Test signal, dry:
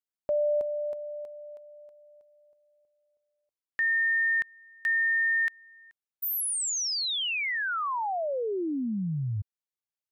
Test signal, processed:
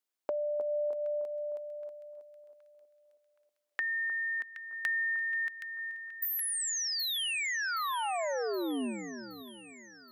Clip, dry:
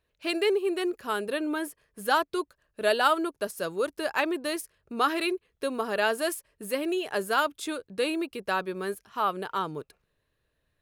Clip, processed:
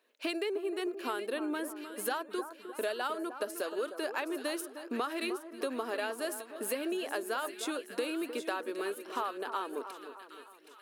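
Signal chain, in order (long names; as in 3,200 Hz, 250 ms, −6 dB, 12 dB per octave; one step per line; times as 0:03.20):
elliptic high-pass filter 240 Hz, stop band 40 dB
downward compressor 6 to 1, threshold −39 dBFS
echo with a time of its own for lows and highs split 1,500 Hz, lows 307 ms, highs 771 ms, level −10 dB
level +6 dB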